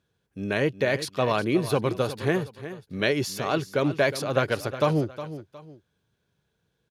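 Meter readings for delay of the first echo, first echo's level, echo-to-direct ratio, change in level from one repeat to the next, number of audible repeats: 362 ms, −13.0 dB, −12.5 dB, −10.0 dB, 2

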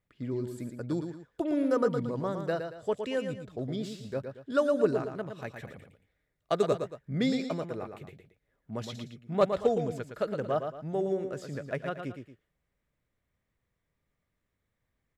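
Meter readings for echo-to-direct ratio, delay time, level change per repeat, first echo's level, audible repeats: −6.5 dB, 114 ms, −9.0 dB, −7.0 dB, 2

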